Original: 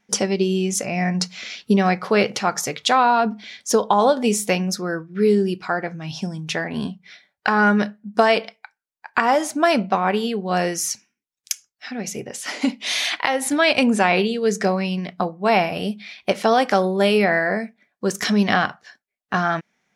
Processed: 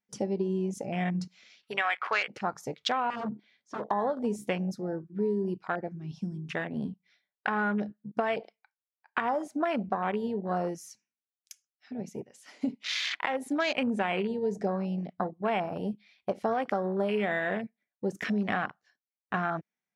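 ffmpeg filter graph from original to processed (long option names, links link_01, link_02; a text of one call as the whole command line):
ffmpeg -i in.wav -filter_complex "[0:a]asettb=1/sr,asplit=3[link_01][link_02][link_03];[link_01]atrim=end=1.634[link_04];[link_02]atrim=start=1.63:end=2.28,asetpts=PTS-STARTPTS,afade=type=in:duration=0.004:curve=qsin,afade=type=out:start_time=0.646:duration=0.004:curve=qsin,highpass=810,equalizer=frequency=2000:width=0.44:gain=12.5[link_05];[link_03]atrim=start=2.276[link_06];[link_04][link_05]acrossfade=duration=0.004:curve1=hsin:curve2=qsin[link_07];[link_07][link_06]acrossfade=duration=0.004:curve1=qsin:curve2=hsin,asettb=1/sr,asplit=3[link_08][link_09][link_10];[link_08]atrim=end=3.104[link_11];[link_09]atrim=start=3.1:end=3.91,asetpts=PTS-STARTPTS,afade=type=in:duration=0.004:curve=qsin,afade=type=out:start_time=0.806:duration=0.004:curve=qsin,aemphasis=mode=reproduction:type=75kf,aeval=exprs='0.1*(abs(mod(val(0)/0.1+3,4)-2)-1)':channel_layout=same,highpass=100,lowpass=6500[link_12];[link_10]atrim=start=3.906[link_13];[link_11][link_12]acrossfade=duration=0.004:curve1=hsin:curve2=qsin[link_14];[link_14][link_13]acrossfade=duration=0.004:curve1=qsin:curve2=hsin,afwtdn=0.0631,acompressor=threshold=-18dB:ratio=6,volume=-7dB" out.wav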